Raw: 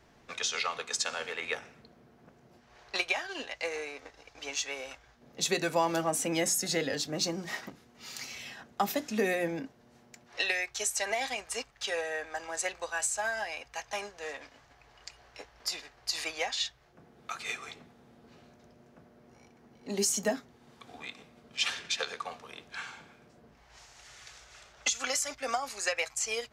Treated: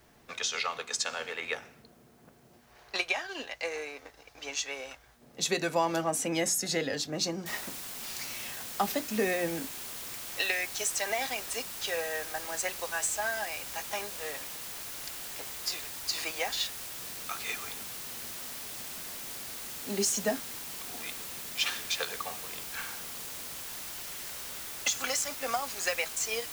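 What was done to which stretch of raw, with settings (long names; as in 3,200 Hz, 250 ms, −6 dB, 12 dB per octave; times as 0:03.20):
0:07.46: noise floor change −69 dB −41 dB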